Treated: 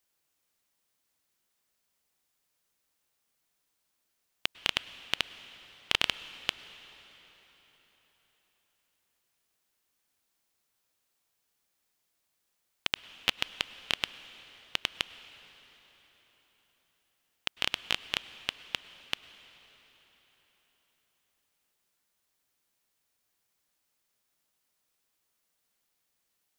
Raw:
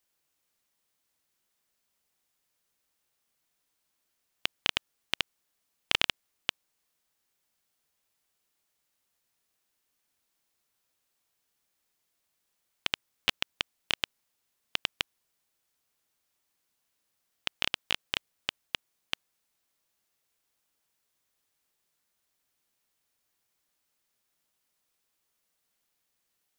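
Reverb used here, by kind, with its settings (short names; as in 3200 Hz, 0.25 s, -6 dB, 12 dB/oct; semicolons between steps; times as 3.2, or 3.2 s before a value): plate-style reverb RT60 4.5 s, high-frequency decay 0.85×, pre-delay 90 ms, DRR 14.5 dB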